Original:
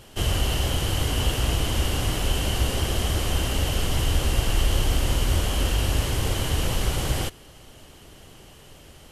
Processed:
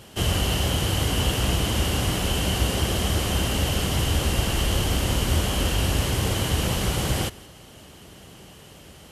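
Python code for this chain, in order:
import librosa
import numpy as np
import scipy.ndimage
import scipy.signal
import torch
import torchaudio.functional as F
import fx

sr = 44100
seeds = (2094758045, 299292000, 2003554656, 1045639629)

y = scipy.signal.sosfilt(scipy.signal.butter(2, 58.0, 'highpass', fs=sr, output='sos'), x)
y = fx.peak_eq(y, sr, hz=190.0, db=5.5, octaves=0.35)
y = y + 10.0 ** (-22.0 / 20.0) * np.pad(y, (int(174 * sr / 1000.0), 0))[:len(y)]
y = y * 10.0 ** (2.0 / 20.0)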